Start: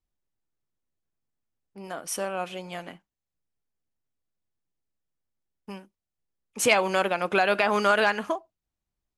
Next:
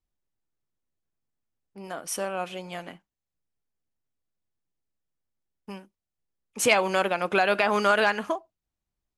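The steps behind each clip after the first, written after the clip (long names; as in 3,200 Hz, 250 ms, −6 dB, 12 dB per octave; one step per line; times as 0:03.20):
no processing that can be heard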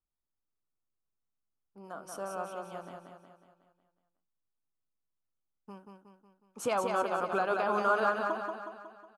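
high shelf with overshoot 1,600 Hz −6.5 dB, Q 3
on a send: repeating echo 183 ms, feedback 52%, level −4.5 dB
on the sum: level −9 dB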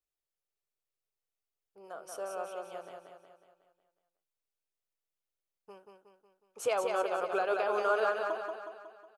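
drawn EQ curve 140 Hz 0 dB, 230 Hz −10 dB, 420 Hz +11 dB, 660 Hz +9 dB, 980 Hz +3 dB, 2,500 Hz +10 dB, 4,100 Hz +8 dB
level −8.5 dB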